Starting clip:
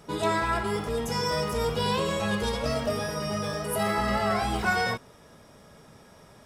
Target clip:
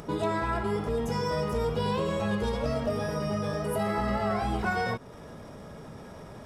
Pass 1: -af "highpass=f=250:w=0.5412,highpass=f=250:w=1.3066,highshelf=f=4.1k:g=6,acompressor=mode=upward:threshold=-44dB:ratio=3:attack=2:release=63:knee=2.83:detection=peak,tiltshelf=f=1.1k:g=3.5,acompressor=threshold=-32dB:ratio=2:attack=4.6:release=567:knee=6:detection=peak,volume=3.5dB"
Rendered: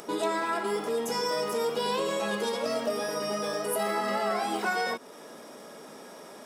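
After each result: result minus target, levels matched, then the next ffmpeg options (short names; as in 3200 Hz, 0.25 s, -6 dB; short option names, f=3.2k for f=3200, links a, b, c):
8000 Hz band +9.0 dB; 250 Hz band -4.5 dB
-af "highpass=f=250:w=0.5412,highpass=f=250:w=1.3066,highshelf=f=4.1k:g=-4.5,acompressor=mode=upward:threshold=-44dB:ratio=3:attack=2:release=63:knee=2.83:detection=peak,tiltshelf=f=1.1k:g=3.5,acompressor=threshold=-32dB:ratio=2:attack=4.6:release=567:knee=6:detection=peak,volume=3.5dB"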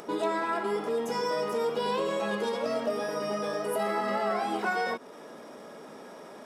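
250 Hz band -4.0 dB
-af "highshelf=f=4.1k:g=-4.5,acompressor=mode=upward:threshold=-44dB:ratio=3:attack=2:release=63:knee=2.83:detection=peak,tiltshelf=f=1.1k:g=3.5,acompressor=threshold=-32dB:ratio=2:attack=4.6:release=567:knee=6:detection=peak,volume=3.5dB"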